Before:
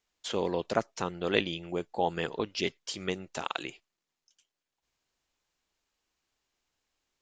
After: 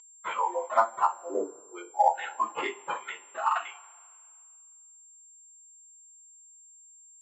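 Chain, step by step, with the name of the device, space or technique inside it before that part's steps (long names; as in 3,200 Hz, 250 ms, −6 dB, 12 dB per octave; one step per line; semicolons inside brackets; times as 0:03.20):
0:01.05–0:01.72: Butterworth low-pass 950 Hz 48 dB per octave
noise reduction from a noise print of the clip's start 23 dB
high-pass filter 270 Hz 24 dB per octave
coupled-rooms reverb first 0.2 s, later 1.9 s, from −28 dB, DRR −9 dB
toy sound module (linearly interpolated sample-rate reduction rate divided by 8×; switching amplifier with a slow clock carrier 7,400 Hz; loudspeaker in its box 610–4,100 Hz, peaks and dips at 660 Hz −5 dB, 1,000 Hz +8 dB, 1,800 Hz −8 dB, 2,600 Hz −5 dB, 3,800 Hz −5 dB)
level +1.5 dB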